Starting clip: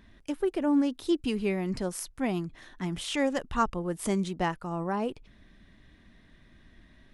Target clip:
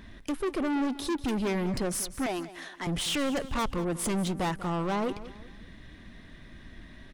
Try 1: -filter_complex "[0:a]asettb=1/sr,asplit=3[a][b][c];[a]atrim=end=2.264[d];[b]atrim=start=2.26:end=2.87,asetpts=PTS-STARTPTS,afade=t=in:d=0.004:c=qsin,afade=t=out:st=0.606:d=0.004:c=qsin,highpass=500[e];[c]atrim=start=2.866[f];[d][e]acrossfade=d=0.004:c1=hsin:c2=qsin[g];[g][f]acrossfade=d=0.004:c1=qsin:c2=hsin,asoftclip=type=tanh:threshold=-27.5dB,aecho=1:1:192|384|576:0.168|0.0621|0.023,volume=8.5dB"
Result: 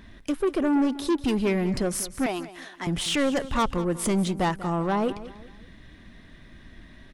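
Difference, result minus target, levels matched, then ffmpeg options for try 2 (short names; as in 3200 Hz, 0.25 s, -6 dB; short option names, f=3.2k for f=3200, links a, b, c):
soft clip: distortion -5 dB
-filter_complex "[0:a]asettb=1/sr,asplit=3[a][b][c];[a]atrim=end=2.264[d];[b]atrim=start=2.26:end=2.87,asetpts=PTS-STARTPTS,afade=t=in:d=0.004:c=qsin,afade=t=out:st=0.606:d=0.004:c=qsin,highpass=500[e];[c]atrim=start=2.866[f];[d][e]acrossfade=d=0.004:c1=hsin:c2=qsin[g];[g][f]acrossfade=d=0.004:c1=qsin:c2=hsin,asoftclip=type=tanh:threshold=-35dB,aecho=1:1:192|384|576:0.168|0.0621|0.023,volume=8.5dB"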